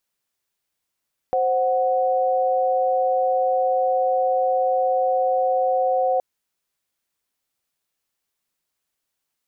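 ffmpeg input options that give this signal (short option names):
-f lavfi -i "aevalsrc='0.1*(sin(2*PI*523.25*t)+sin(2*PI*739.99*t))':d=4.87:s=44100"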